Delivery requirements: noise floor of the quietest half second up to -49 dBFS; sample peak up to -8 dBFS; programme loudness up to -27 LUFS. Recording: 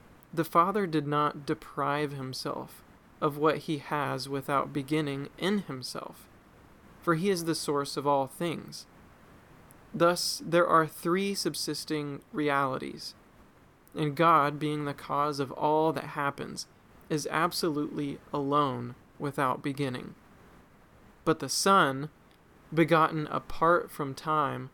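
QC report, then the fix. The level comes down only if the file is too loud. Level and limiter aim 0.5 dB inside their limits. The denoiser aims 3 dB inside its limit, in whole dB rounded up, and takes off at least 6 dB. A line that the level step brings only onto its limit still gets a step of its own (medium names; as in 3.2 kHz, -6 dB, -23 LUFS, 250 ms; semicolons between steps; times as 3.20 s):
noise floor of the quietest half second -58 dBFS: pass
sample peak -9.5 dBFS: pass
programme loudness -29.0 LUFS: pass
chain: none needed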